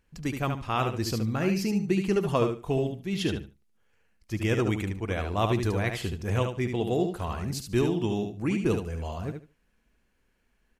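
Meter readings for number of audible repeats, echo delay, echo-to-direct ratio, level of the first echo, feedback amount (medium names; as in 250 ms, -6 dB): 3, 73 ms, -6.0 dB, -6.0 dB, 19%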